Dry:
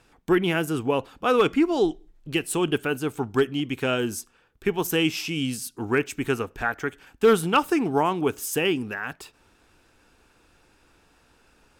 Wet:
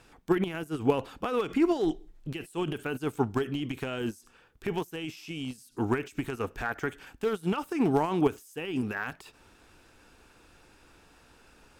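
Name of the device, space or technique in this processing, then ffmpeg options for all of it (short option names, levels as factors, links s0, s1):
de-esser from a sidechain: -filter_complex "[0:a]asplit=2[s0][s1];[s1]highpass=6400,apad=whole_len=520043[s2];[s0][s2]sidechaincompress=threshold=0.00251:ratio=20:attack=0.61:release=38,volume=1.26"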